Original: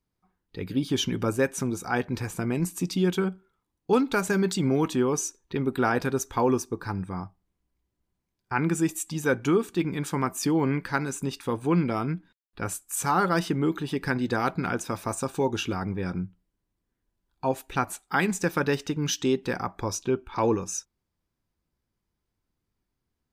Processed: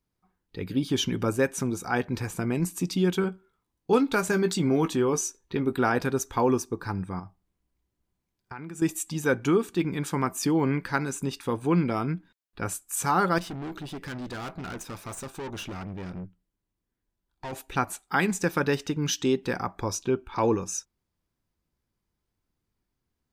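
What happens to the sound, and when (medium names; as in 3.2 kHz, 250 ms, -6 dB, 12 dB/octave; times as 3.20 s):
3.22–5.73 s: doubling 18 ms -10 dB
7.19–8.82 s: compression, threshold -36 dBFS
13.38–17.53 s: valve stage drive 33 dB, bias 0.65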